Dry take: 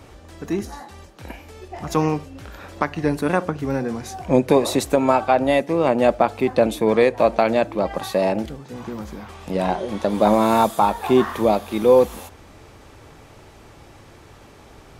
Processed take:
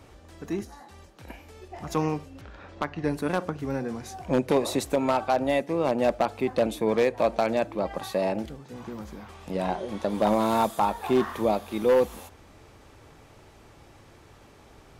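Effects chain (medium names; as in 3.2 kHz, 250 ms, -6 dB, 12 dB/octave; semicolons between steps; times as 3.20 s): 0.63–1.28 s: compression, threshold -36 dBFS, peak gain reduction 5 dB; 2.41–3.04 s: distance through air 120 m; wavefolder -7 dBFS; trim -6.5 dB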